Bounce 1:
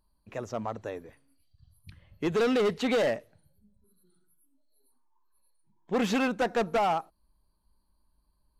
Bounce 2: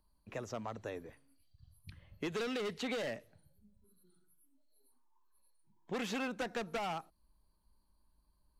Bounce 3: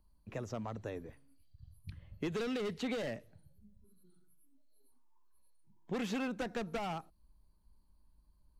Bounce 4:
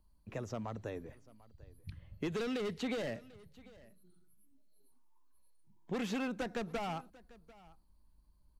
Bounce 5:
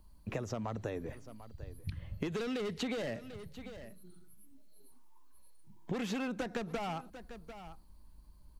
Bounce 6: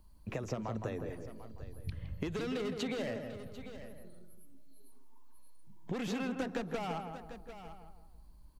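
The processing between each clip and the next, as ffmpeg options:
ffmpeg -i in.wav -filter_complex "[0:a]acrossover=split=300|1600[link_01][link_02][link_03];[link_01]acompressor=threshold=-43dB:ratio=4[link_04];[link_02]acompressor=threshold=-39dB:ratio=4[link_05];[link_03]acompressor=threshold=-40dB:ratio=4[link_06];[link_04][link_05][link_06]amix=inputs=3:normalize=0,volume=-2dB" out.wav
ffmpeg -i in.wav -af "lowshelf=frequency=310:gain=9,volume=-2.5dB" out.wav
ffmpeg -i in.wav -af "aecho=1:1:744:0.0841" out.wav
ffmpeg -i in.wav -af "acompressor=threshold=-44dB:ratio=6,volume=10dB" out.wav
ffmpeg -i in.wav -filter_complex "[0:a]asplit=2[link_01][link_02];[link_02]adelay=164,lowpass=frequency=1400:poles=1,volume=-5dB,asplit=2[link_03][link_04];[link_04]adelay=164,lowpass=frequency=1400:poles=1,volume=0.43,asplit=2[link_05][link_06];[link_06]adelay=164,lowpass=frequency=1400:poles=1,volume=0.43,asplit=2[link_07][link_08];[link_08]adelay=164,lowpass=frequency=1400:poles=1,volume=0.43,asplit=2[link_09][link_10];[link_10]adelay=164,lowpass=frequency=1400:poles=1,volume=0.43[link_11];[link_01][link_03][link_05][link_07][link_09][link_11]amix=inputs=6:normalize=0,volume=-1dB" out.wav

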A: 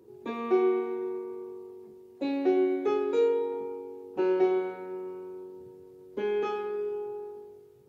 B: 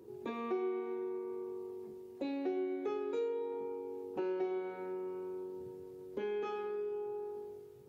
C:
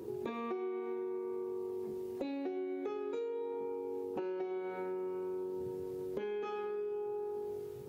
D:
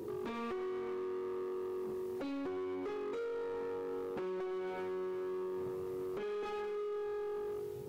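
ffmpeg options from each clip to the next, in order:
ffmpeg -i in.wav -af "acompressor=threshold=-41dB:ratio=2.5,volume=1dB" out.wav
ffmpeg -i in.wav -af "acompressor=threshold=-47dB:ratio=6,volume=10dB" out.wav
ffmpeg -i in.wav -af "asoftclip=type=hard:threshold=-39dB,volume=2dB" out.wav

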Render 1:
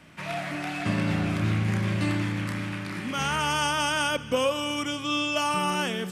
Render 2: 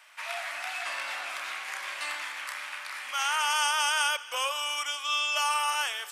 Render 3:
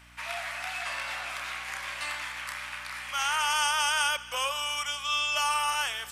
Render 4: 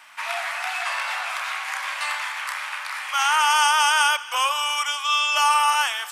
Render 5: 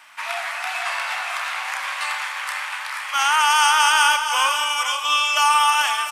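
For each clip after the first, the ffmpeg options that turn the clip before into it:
ffmpeg -i in.wav -af "highpass=frequency=810:width=0.5412,highpass=frequency=810:width=1.3066,highshelf=frequency=7200:gain=5.5" out.wav
ffmpeg -i in.wav -af "aeval=exprs='val(0)+0.00158*(sin(2*PI*60*n/s)+sin(2*PI*2*60*n/s)/2+sin(2*PI*3*60*n/s)/3+sin(2*PI*4*60*n/s)/4+sin(2*PI*5*60*n/s)/5)':channel_layout=same" out.wav
ffmpeg -i in.wav -af "highpass=frequency=850:width_type=q:width=1.7,acontrast=45" out.wav
ffmpeg -i in.wav -filter_complex "[0:a]aeval=exprs='0.473*(cos(1*acos(clip(val(0)/0.473,-1,1)))-cos(1*PI/2))+0.0119*(cos(7*acos(clip(val(0)/0.473,-1,1)))-cos(7*PI/2))':channel_layout=same,asplit=2[link_01][link_02];[link_02]aecho=0:1:451|482|702:0.211|0.355|0.2[link_03];[link_01][link_03]amix=inputs=2:normalize=0,volume=2dB" out.wav

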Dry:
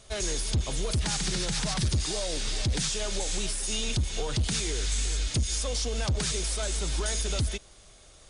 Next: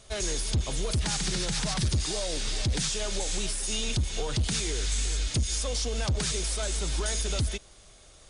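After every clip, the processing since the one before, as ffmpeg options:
ffmpeg -i in.wav -af anull out.wav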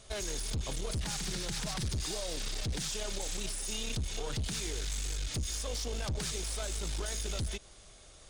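ffmpeg -i in.wav -af "alimiter=level_in=1dB:limit=-24dB:level=0:latency=1:release=95,volume=-1dB,aeval=exprs='clip(val(0),-1,0.0224)':channel_layout=same,volume=-1.5dB" out.wav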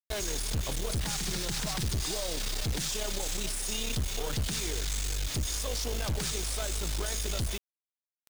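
ffmpeg -i in.wav -af "acrusher=bits=6:mix=0:aa=0.000001,volume=3.5dB" out.wav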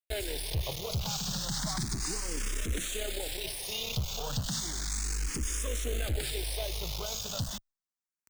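ffmpeg -i in.wav -filter_complex "[0:a]asplit=2[link_01][link_02];[link_02]afreqshift=0.33[link_03];[link_01][link_03]amix=inputs=2:normalize=1,volume=1.5dB" out.wav

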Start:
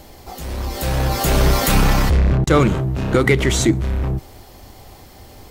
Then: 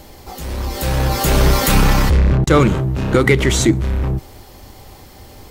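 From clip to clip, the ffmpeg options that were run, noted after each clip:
ffmpeg -i in.wav -af "bandreject=frequency=690:width=12,volume=2dB" out.wav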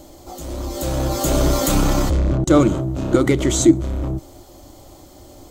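ffmpeg -i in.wav -af "superequalizer=6b=2.82:8b=2.24:11b=0.501:12b=0.562:15b=2,volume=-5.5dB" out.wav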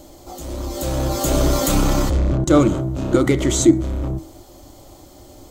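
ffmpeg -i in.wav -af "bandreject=frequency=80.08:width_type=h:width=4,bandreject=frequency=160.16:width_type=h:width=4,bandreject=frequency=240.24:width_type=h:width=4,bandreject=frequency=320.32:width_type=h:width=4,bandreject=frequency=400.4:width_type=h:width=4,bandreject=frequency=480.48:width_type=h:width=4,bandreject=frequency=560.56:width_type=h:width=4,bandreject=frequency=640.64:width_type=h:width=4,bandreject=frequency=720.72:width_type=h:width=4,bandreject=frequency=800.8:width_type=h:width=4,bandreject=frequency=880.88:width_type=h:width=4,bandreject=frequency=960.96:width_type=h:width=4,bandreject=frequency=1041.04:width_type=h:width=4,bandreject=frequency=1121.12:width_type=h:width=4,bandreject=frequency=1201.2:width_type=h:width=4,bandreject=frequency=1281.28:width_type=h:width=4,bandreject=frequency=1361.36:width_type=h:width=4,bandreject=frequency=1441.44:width_type=h:width=4,bandreject=frequency=1521.52:width_type=h:width=4,bandreject=frequency=1601.6:width_type=h:width=4,bandreject=frequency=1681.68:width_type=h:width=4,bandreject=frequency=1761.76:width_type=h:width=4,bandreject=frequency=1841.84:width_type=h:width=4,bandreject=frequency=1921.92:width_type=h:width=4,bandreject=frequency=2002:width_type=h:width=4,bandreject=frequency=2082.08:width_type=h:width=4,bandreject=frequency=2162.16:width_type=h:width=4,bandreject=frequency=2242.24:width_type=h:width=4" out.wav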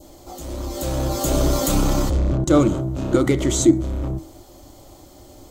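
ffmpeg -i in.wav -af "adynamicequalizer=threshold=0.0141:dfrequency=1900:dqfactor=1.1:tfrequency=1900:tqfactor=1.1:attack=5:release=100:ratio=0.375:range=2:mode=cutabove:tftype=bell,volume=-1.5dB" out.wav

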